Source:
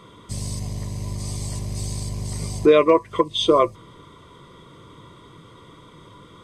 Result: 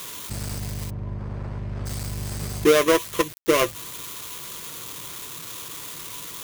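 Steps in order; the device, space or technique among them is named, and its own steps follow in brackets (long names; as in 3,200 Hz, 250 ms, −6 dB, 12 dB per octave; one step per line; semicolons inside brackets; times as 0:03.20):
budget class-D amplifier (gap after every zero crossing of 0.29 ms; spike at every zero crossing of −15.5 dBFS)
0:00.89–0:01.85: low-pass filter 1,000 Hz → 1,900 Hz 12 dB per octave
level −2 dB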